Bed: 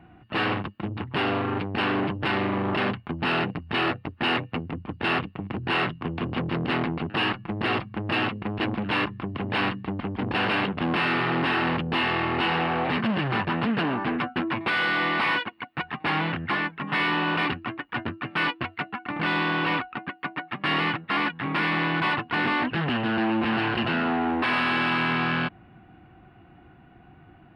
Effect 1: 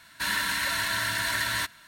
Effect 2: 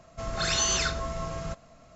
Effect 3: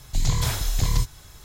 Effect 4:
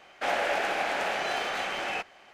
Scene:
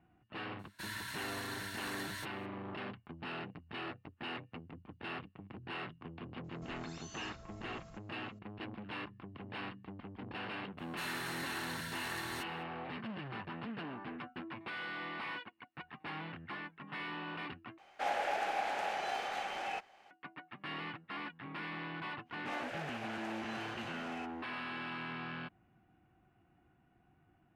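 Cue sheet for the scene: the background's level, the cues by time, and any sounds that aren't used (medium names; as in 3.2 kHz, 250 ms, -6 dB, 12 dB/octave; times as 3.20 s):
bed -18 dB
0.59 s: add 1 -16 dB
6.44 s: add 2 -16 dB + compression, threshold -34 dBFS
10.77 s: add 1 -15.5 dB, fades 0.02 s
17.78 s: replace with 4 -10 dB + peaking EQ 800 Hz +8.5 dB 0.26 oct
22.24 s: add 4 -16 dB, fades 0.10 s
not used: 3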